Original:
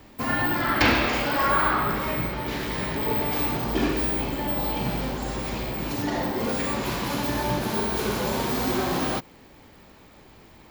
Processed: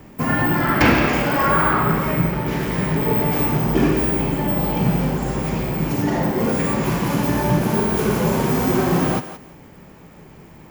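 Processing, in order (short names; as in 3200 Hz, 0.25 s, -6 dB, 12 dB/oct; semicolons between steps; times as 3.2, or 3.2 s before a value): fifteen-band EQ 160 Hz +11 dB, 400 Hz +3 dB, 4000 Hz -9 dB; thinning echo 0.17 s, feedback 21%, level -11 dB; gain +4 dB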